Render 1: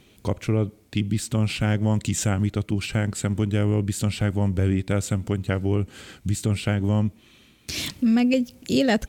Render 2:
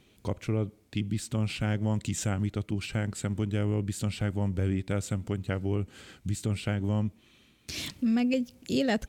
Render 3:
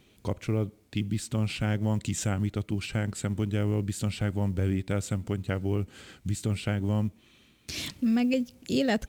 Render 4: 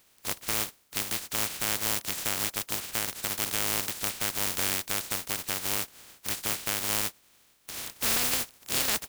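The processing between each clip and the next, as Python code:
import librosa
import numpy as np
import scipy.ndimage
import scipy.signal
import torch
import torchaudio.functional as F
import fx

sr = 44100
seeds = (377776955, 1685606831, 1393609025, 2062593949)

y1 = fx.high_shelf(x, sr, hz=11000.0, db=-3.5)
y1 = y1 * librosa.db_to_amplitude(-6.5)
y2 = fx.quant_companded(y1, sr, bits=8)
y2 = y2 * librosa.db_to_amplitude(1.0)
y3 = fx.spec_flatten(y2, sr, power=0.13)
y3 = y3 * librosa.db_to_amplitude(-2.0)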